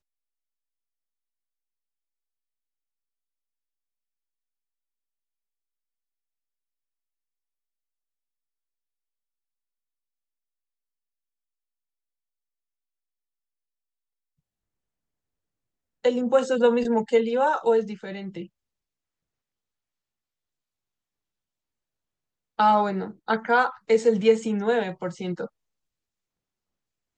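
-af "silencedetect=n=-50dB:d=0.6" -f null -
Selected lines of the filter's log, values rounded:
silence_start: 0.00
silence_end: 16.04 | silence_duration: 16.04
silence_start: 18.47
silence_end: 22.58 | silence_duration: 4.11
silence_start: 25.48
silence_end: 27.18 | silence_duration: 1.69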